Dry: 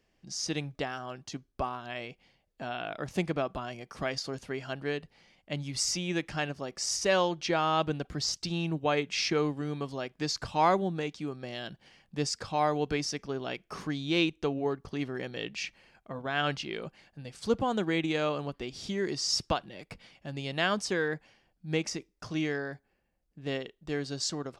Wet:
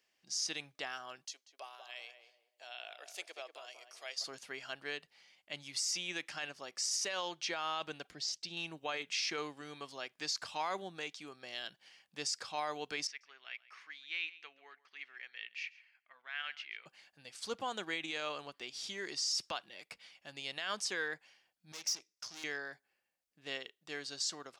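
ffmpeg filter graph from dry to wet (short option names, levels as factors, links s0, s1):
-filter_complex "[0:a]asettb=1/sr,asplit=3[s0][s1][s2];[s0]atrim=end=1.254[s3];[s1]atrim=start=1.25:end=4.24,asetpts=PTS-STARTPTS,afade=t=in:d=0.004:c=qsin,afade=t=out:st=2.986:d=0.004:c=qsin,highpass=f=510:w=0.5412,highpass=f=510:w=1.3066,equalizer=f=1200:t=o:w=1.7:g=-12,asplit=2[s4][s5];[s5]adelay=189,lowpass=f=1100:p=1,volume=0.501,asplit=2[s6][s7];[s7]adelay=189,lowpass=f=1100:p=1,volume=0.35,asplit=2[s8][s9];[s9]adelay=189,lowpass=f=1100:p=1,volume=0.35,asplit=2[s10][s11];[s11]adelay=189,lowpass=f=1100:p=1,volume=0.35[s12];[s4][s6][s8][s10][s12]amix=inputs=5:normalize=0,atrim=end_sample=131859[s13];[s2]atrim=start=4.236[s14];[s3][s13]acrossfade=d=0.004:c1=hsin:c2=qsin[s15];[s15][s14]acrossfade=d=0.004:c1=qsin:c2=hsin,asettb=1/sr,asplit=3[s16][s17][s18];[s16]atrim=end=8.114[s19];[s17]atrim=start=8.11:end=8.57,asetpts=PTS-STARTPTS,afade=t=in:d=0.004:c=qsin,afade=t=out:st=0.456:d=0.004:c=qsin,lowpass=f=2800:p=1,equalizer=f=1200:t=o:w=0.84:g=-10[s20];[s18]atrim=start=8.566[s21];[s19][s20]acrossfade=d=0.004:c1=hsin:c2=qsin[s22];[s22][s21]acrossfade=d=0.004:c1=qsin:c2=hsin,asettb=1/sr,asplit=3[s23][s24][s25];[s23]atrim=end=13.074[s26];[s24]atrim=start=13.07:end=16.86,asetpts=PTS-STARTPTS,afade=t=in:d=0.004:c=qsin,afade=t=out:st=3.786:d=0.004:c=qsin,bandpass=f=2100:t=q:w=2.7,aecho=1:1:137:0.1,atrim=end_sample=167139[s27];[s25]atrim=start=16.856[s28];[s26][s27]acrossfade=d=0.004:c1=hsin:c2=qsin[s29];[s29][s28]acrossfade=d=0.004:c1=qsin:c2=hsin,asettb=1/sr,asplit=3[s30][s31][s32];[s30]atrim=end=21.724[s33];[s31]atrim=start=21.72:end=22.44,asetpts=PTS-STARTPTS,afade=t=in:d=0.004:c=qsin,afade=t=out:st=0.716:d=0.004:c=qsin,aeval=exprs='(tanh(112*val(0)+0.75)-tanh(0.75))/112':c=same,equalizer=f=5600:t=o:w=0.7:g=12.5[s34];[s32]atrim=start=22.436[s35];[s33][s34]acrossfade=d=0.004:c1=hsin:c2=qsin[s36];[s36][s35]acrossfade=d=0.004:c1=qsin:c2=hsin,lowpass=f=2100:p=1,aderivative,alimiter=level_in=5.01:limit=0.0631:level=0:latency=1:release=10,volume=0.2,volume=3.76"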